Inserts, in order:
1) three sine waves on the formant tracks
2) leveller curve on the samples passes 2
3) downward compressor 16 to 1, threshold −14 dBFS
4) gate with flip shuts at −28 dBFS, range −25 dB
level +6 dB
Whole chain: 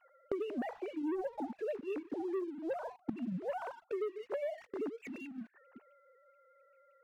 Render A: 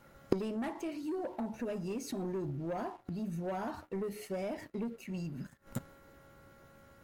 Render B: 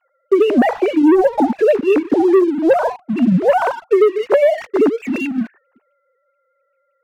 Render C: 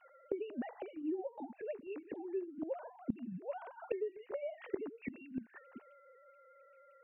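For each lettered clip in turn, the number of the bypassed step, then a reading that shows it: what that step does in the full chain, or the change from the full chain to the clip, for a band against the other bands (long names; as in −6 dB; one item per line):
1, 125 Hz band +10.5 dB
4, change in momentary loudness spread +1 LU
2, change in momentary loudness spread +14 LU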